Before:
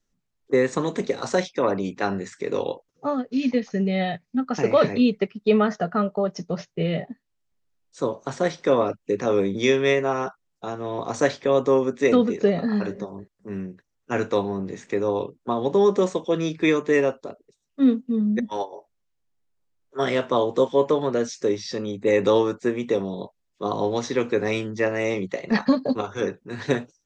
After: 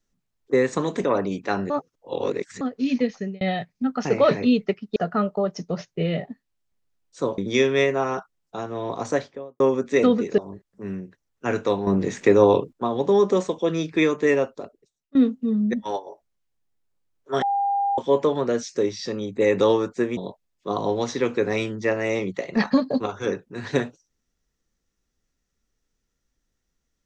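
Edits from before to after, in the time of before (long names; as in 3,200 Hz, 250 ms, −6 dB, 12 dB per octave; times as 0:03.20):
0:01.04–0:01.57: remove
0:02.23–0:03.14: reverse
0:03.65–0:03.94: fade out
0:05.49–0:05.76: remove
0:08.18–0:09.47: remove
0:11.02–0:11.69: fade out and dull
0:12.47–0:13.04: remove
0:14.53–0:15.39: clip gain +8.5 dB
0:17.29–0:17.81: fade out, to −20 dB
0:20.08–0:20.64: beep over 801 Hz −19.5 dBFS
0:22.83–0:23.12: remove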